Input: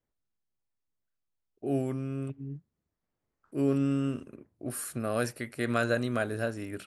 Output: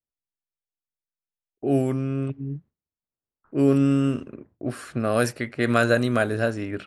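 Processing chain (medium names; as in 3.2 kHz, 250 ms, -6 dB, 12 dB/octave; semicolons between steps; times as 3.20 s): gate with hold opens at -54 dBFS; level-controlled noise filter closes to 1.6 kHz, open at -24.5 dBFS; trim +8 dB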